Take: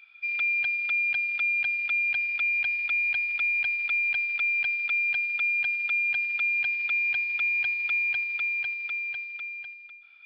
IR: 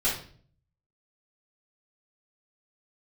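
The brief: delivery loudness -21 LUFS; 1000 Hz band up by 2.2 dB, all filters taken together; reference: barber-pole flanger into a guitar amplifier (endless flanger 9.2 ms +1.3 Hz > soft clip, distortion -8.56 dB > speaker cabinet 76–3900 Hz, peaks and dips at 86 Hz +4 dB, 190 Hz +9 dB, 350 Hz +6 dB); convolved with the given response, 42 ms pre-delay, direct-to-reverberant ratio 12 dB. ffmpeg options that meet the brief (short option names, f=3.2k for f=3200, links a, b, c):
-filter_complex "[0:a]equalizer=f=1k:t=o:g=3.5,asplit=2[a][b];[1:a]atrim=start_sample=2205,adelay=42[c];[b][c]afir=irnorm=-1:irlink=0,volume=-22.5dB[d];[a][d]amix=inputs=2:normalize=0,asplit=2[e][f];[f]adelay=9.2,afreqshift=1.3[g];[e][g]amix=inputs=2:normalize=1,asoftclip=threshold=-35dB,highpass=76,equalizer=f=86:t=q:w=4:g=4,equalizer=f=190:t=q:w=4:g=9,equalizer=f=350:t=q:w=4:g=6,lowpass=f=3.9k:w=0.5412,lowpass=f=3.9k:w=1.3066,volume=14dB"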